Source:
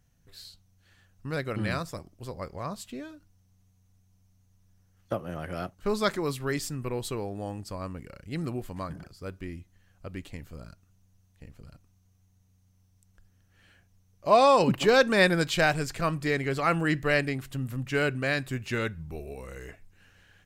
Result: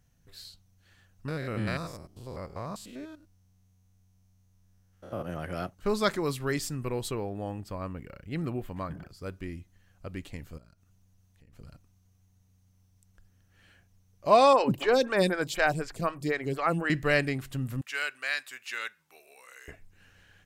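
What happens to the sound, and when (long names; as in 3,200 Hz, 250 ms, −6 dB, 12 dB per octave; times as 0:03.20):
0:01.28–0:05.24: spectrum averaged block by block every 100 ms
0:07.11–0:09.10: flat-topped bell 7,000 Hz −8 dB
0:10.58–0:11.53: downward compressor 3 to 1, threshold −58 dBFS
0:14.53–0:16.90: phaser with staggered stages 4 Hz
0:17.81–0:19.68: high-pass filter 1,300 Hz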